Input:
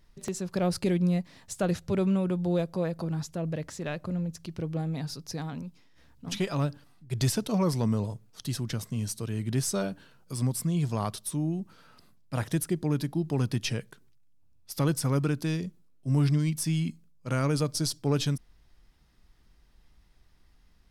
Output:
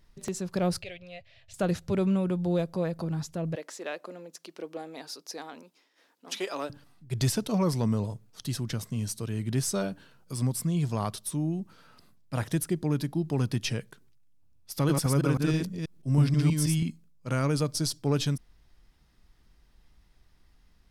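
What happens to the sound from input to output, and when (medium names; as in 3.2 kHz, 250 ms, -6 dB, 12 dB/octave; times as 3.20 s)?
0.82–1.54 s: FFT filter 120 Hz 0 dB, 180 Hz -28 dB, 330 Hz -26 dB, 640 Hz 0 dB, 910 Hz -20 dB, 2.7 kHz +3 dB, 9.5 kHz -23 dB
3.55–6.70 s: high-pass 330 Hz 24 dB/octave
14.73–16.83 s: chunks repeated in reverse 161 ms, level -2 dB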